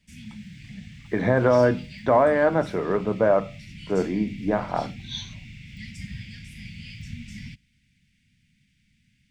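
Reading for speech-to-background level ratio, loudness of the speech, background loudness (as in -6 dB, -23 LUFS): 18.0 dB, -23.0 LUFS, -41.0 LUFS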